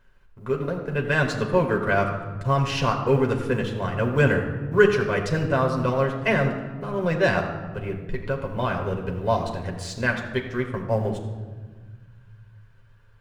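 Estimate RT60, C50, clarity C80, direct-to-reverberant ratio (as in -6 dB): 1.4 s, 7.0 dB, 8.0 dB, 1.0 dB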